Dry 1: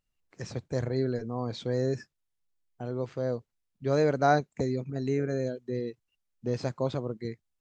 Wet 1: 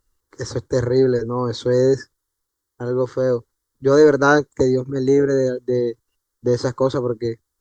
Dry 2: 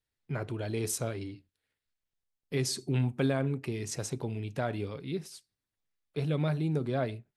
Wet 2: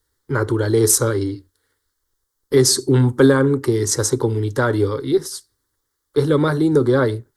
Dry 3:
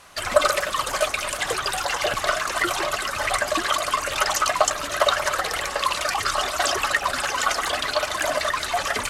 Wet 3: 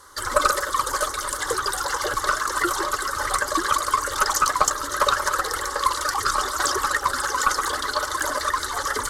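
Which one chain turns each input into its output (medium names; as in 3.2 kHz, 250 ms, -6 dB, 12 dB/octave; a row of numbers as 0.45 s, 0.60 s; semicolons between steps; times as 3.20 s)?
static phaser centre 680 Hz, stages 6; Chebyshev shaper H 4 -23 dB, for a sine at -5 dBFS; peak normalisation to -1.5 dBFS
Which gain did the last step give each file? +15.0 dB, +19.5 dB, +3.0 dB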